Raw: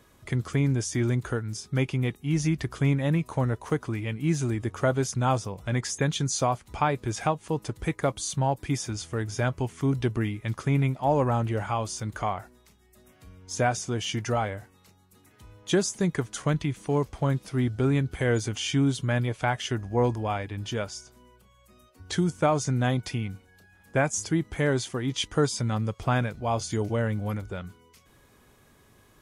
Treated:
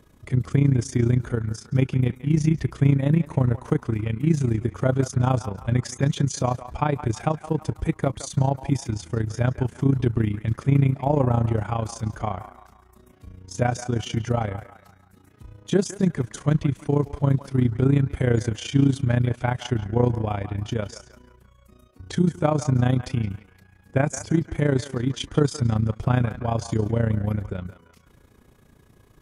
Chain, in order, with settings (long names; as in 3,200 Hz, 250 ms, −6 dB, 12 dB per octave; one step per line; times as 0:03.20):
low-shelf EQ 470 Hz +10 dB
on a send: feedback echo with a band-pass in the loop 165 ms, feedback 52%, band-pass 1,400 Hz, level −11 dB
on the sum: amplitude modulation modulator 29 Hz, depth 60%